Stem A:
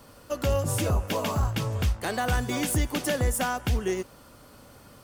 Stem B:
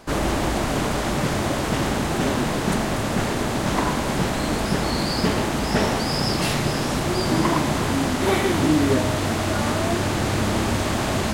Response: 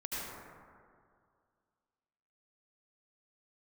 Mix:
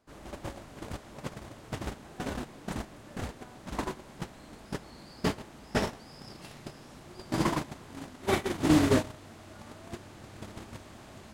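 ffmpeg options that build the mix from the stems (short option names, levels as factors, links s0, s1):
-filter_complex "[0:a]lowpass=1600,acompressor=threshold=0.0447:ratio=3,volume=0.891[s0];[1:a]volume=0.75[s1];[s0][s1]amix=inputs=2:normalize=0,agate=range=0.0631:threshold=0.1:ratio=16:detection=peak"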